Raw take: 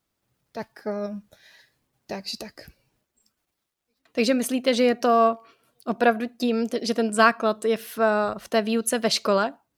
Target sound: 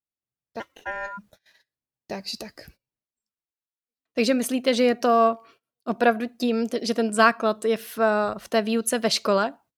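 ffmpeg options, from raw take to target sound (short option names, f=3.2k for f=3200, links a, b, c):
-filter_complex "[0:a]asplit=3[a][b][c];[a]afade=t=out:st=0.59:d=0.02[d];[b]aeval=exprs='val(0)*sin(2*PI*1200*n/s)':c=same,afade=t=in:st=0.59:d=0.02,afade=t=out:st=1.17:d=0.02[e];[c]afade=t=in:st=1.17:d=0.02[f];[d][e][f]amix=inputs=3:normalize=0,agate=range=-24dB:threshold=-51dB:ratio=16:detection=peak"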